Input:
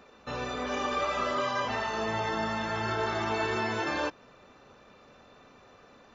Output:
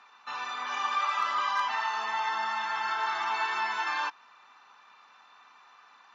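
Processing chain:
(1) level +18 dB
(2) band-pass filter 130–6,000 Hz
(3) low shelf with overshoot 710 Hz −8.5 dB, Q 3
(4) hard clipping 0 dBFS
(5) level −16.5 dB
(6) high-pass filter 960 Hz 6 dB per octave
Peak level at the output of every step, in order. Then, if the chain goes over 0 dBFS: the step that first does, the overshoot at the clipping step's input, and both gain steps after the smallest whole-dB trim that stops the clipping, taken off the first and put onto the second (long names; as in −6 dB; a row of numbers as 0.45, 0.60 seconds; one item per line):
+0.5, +0.5, +3.5, 0.0, −16.5, −17.0 dBFS
step 1, 3.5 dB
step 1 +14 dB, step 5 −12.5 dB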